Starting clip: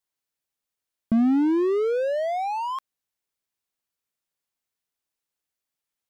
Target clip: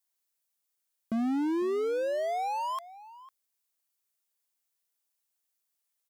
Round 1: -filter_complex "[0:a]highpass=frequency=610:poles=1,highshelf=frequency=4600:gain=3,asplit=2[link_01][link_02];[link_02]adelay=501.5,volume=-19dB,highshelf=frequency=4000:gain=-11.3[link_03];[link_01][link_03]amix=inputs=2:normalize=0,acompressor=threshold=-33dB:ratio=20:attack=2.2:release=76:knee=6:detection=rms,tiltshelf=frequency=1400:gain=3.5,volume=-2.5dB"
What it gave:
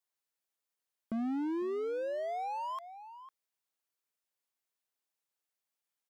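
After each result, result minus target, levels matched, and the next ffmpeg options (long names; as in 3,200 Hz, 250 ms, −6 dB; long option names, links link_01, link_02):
8,000 Hz band −7.0 dB; downward compressor: peak gain reduction +5.5 dB
-filter_complex "[0:a]highpass=frequency=610:poles=1,highshelf=frequency=4600:gain=13.5,asplit=2[link_01][link_02];[link_02]adelay=501.5,volume=-19dB,highshelf=frequency=4000:gain=-11.3[link_03];[link_01][link_03]amix=inputs=2:normalize=0,acompressor=threshold=-33dB:ratio=20:attack=2.2:release=76:knee=6:detection=rms,tiltshelf=frequency=1400:gain=3.5,volume=-2.5dB"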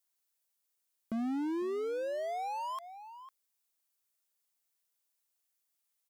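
downward compressor: peak gain reduction +5.5 dB
-filter_complex "[0:a]highpass=frequency=610:poles=1,highshelf=frequency=4600:gain=13.5,asplit=2[link_01][link_02];[link_02]adelay=501.5,volume=-19dB,highshelf=frequency=4000:gain=-11.3[link_03];[link_01][link_03]amix=inputs=2:normalize=0,acompressor=threshold=-25.5dB:ratio=20:attack=2.2:release=76:knee=6:detection=rms,tiltshelf=frequency=1400:gain=3.5,volume=-2.5dB"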